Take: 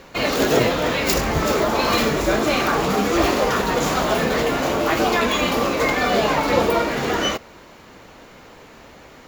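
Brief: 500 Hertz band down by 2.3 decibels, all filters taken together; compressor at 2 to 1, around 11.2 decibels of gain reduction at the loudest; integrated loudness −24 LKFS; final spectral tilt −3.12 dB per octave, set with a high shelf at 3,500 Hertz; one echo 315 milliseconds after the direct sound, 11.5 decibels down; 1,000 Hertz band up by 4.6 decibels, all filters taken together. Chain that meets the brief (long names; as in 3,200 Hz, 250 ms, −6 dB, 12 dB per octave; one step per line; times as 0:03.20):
parametric band 500 Hz −5 dB
parametric band 1,000 Hz +6.5 dB
high-shelf EQ 3,500 Hz +8.5 dB
downward compressor 2 to 1, threshold −31 dBFS
single-tap delay 315 ms −11.5 dB
level +1.5 dB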